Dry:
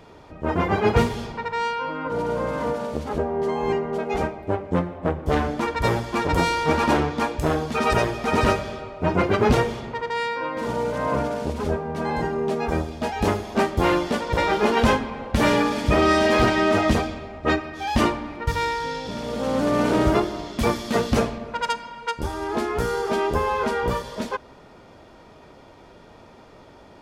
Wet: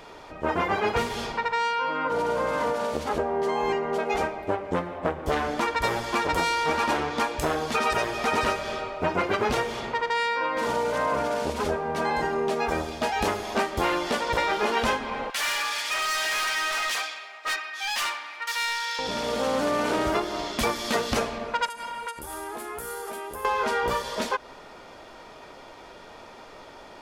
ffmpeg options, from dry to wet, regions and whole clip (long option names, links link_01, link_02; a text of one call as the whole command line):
ffmpeg -i in.wav -filter_complex "[0:a]asettb=1/sr,asplit=3[link_01][link_02][link_03];[link_01]atrim=end=15.304[link_04];[link_02]atrim=start=15.3:end=18.99,asetpts=PTS-STARTPTS,afade=type=in:duration=0.004:curve=qsin,afade=type=out:start_time=3.686:duration=0.004:curve=qsin,highpass=1500,asoftclip=type=hard:threshold=-30dB[link_05];[link_03]atrim=start=18.986[link_06];[link_04][link_05]acrossfade=duration=0.004:curve1=hsin:curve2=qsin[link_07];[link_07][link_06]acrossfade=duration=0.004:curve1=qsin:curve2=hsin,asettb=1/sr,asplit=3[link_08][link_09][link_10];[link_08]atrim=end=21.664[link_11];[link_09]atrim=start=21.66:end=23.45,asetpts=PTS-STARTPTS,afade=type=in:duration=0.004:curve=qsin,afade=type=out:start_time=1.786:duration=0.004:curve=qsin,highshelf=frequency=7700:width_type=q:width=1.5:gain=13.5,acompressor=threshold=-34dB:ratio=12:attack=3.2:release=140:knee=1:detection=peak[link_12];[link_10]atrim=start=23.446[link_13];[link_11][link_12]acrossfade=duration=0.004:curve1=hsin:curve2=qsin[link_14];[link_14][link_13]acrossfade=duration=0.004:curve1=qsin:curve2=hsin,equalizer=frequency=100:width=0.3:gain=-13.5,acompressor=threshold=-29dB:ratio=4,volume=6.5dB" out.wav